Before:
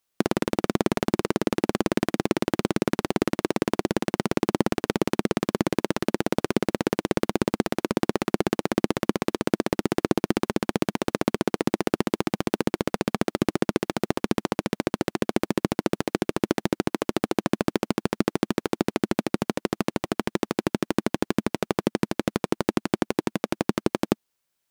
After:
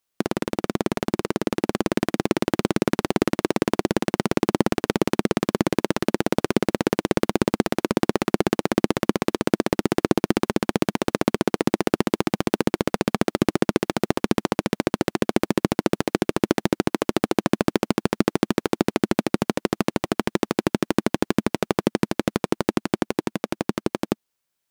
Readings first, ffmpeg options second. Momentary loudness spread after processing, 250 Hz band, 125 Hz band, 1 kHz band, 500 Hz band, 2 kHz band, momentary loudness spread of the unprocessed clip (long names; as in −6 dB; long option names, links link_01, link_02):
3 LU, +2.5 dB, +2.5 dB, +2.5 dB, +2.5 dB, +2.5 dB, 3 LU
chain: -af "dynaudnorm=framelen=240:gausssize=17:maxgain=11.5dB,volume=-1dB"